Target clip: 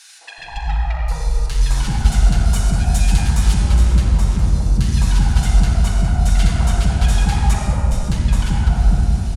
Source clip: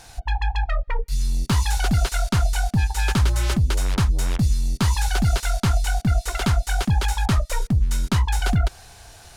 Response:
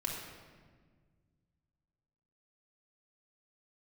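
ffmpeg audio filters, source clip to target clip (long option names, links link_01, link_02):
-filter_complex "[0:a]asettb=1/sr,asplit=3[link_01][link_02][link_03];[link_01]atrim=end=2.454[link_04];[link_02]atrim=start=2.45:end=3.54,asetpts=PTS-STARTPTS,afade=type=in:duration=0.004:curve=qsin,afade=type=out:start_time=1.086:duration=0.004:curve=qsin,highshelf=frequency=4600:gain=8[link_05];[link_03]atrim=start=3.536[link_06];[link_04][link_05]acrossfade=duration=0.004:curve1=hsin:curve2=qsin[link_07];[link_07][link_06]acrossfade=duration=0.004:curve1=qsin:curve2=hsin,asettb=1/sr,asplit=3[link_08][link_09][link_10];[link_08]atrim=end=7.034[link_11];[link_09]atrim=start=7.03:end=7.53,asetpts=PTS-STARTPTS,afade=type=in:duration=0.004:curve=qsin,afade=type=out:start_time=0.496:duration=0.004:curve=qsin,highpass=frequency=160:poles=1[link_12];[link_10]atrim=start=7.526[link_13];[link_11][link_12]acrossfade=duration=0.004:curve1=hsin:curve2=qsin[link_14];[link_14][link_13]acrossfade=duration=0.004:curve1=qsin:curve2=hsin,acompressor=threshold=-21dB:ratio=6,aeval=exprs='0.158*sin(PI/2*1.41*val(0)/0.158)':channel_layout=same,acrossover=split=410|1400[link_15][link_16][link_17];[link_16]adelay=210[link_18];[link_15]adelay=380[link_19];[link_19][link_18][link_17]amix=inputs=3:normalize=0[link_20];[1:a]atrim=start_sample=2205,asetrate=22050,aresample=44100[link_21];[link_20][link_21]afir=irnorm=-1:irlink=0,volume=-6dB"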